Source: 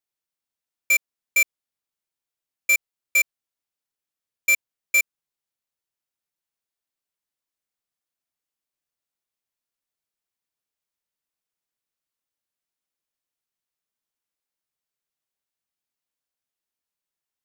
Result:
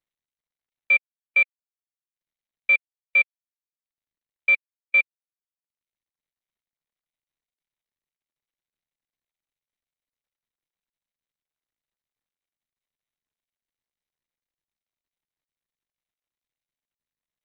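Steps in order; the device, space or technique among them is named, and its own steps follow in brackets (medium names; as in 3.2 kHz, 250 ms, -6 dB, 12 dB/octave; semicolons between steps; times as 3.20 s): reverb removal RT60 0.74 s; Bluetooth headset (high-pass 200 Hz 12 dB/octave; resampled via 8 kHz; trim +1.5 dB; SBC 64 kbps 32 kHz)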